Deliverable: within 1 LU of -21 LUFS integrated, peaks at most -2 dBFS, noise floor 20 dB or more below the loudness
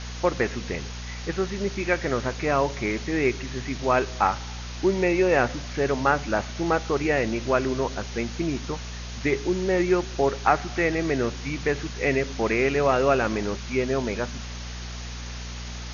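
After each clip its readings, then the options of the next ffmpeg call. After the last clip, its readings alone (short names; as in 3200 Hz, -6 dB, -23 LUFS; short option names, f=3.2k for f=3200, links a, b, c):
hum 60 Hz; harmonics up to 240 Hz; hum level -34 dBFS; noise floor -35 dBFS; noise floor target -45 dBFS; loudness -25.0 LUFS; peak -5.0 dBFS; loudness target -21.0 LUFS
-> -af "bandreject=f=60:t=h:w=4,bandreject=f=120:t=h:w=4,bandreject=f=180:t=h:w=4,bandreject=f=240:t=h:w=4"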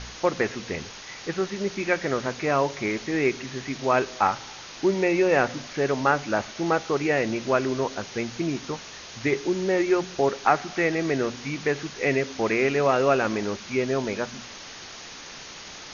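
hum none; noise floor -42 dBFS; noise floor target -46 dBFS
-> -af "afftdn=nr=6:nf=-42"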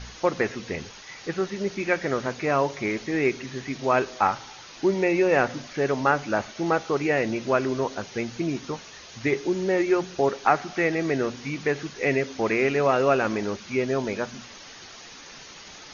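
noise floor -45 dBFS; noise floor target -46 dBFS
-> -af "afftdn=nr=6:nf=-45"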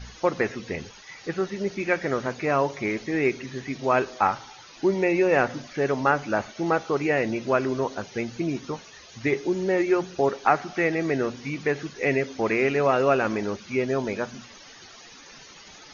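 noise floor -48 dBFS; loudness -25.5 LUFS; peak -4.5 dBFS; loudness target -21.0 LUFS
-> -af "volume=4.5dB,alimiter=limit=-2dB:level=0:latency=1"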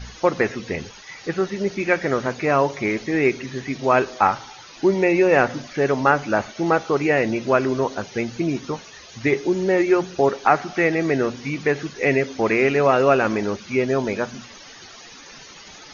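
loudness -21.0 LUFS; peak -2.0 dBFS; noise floor -43 dBFS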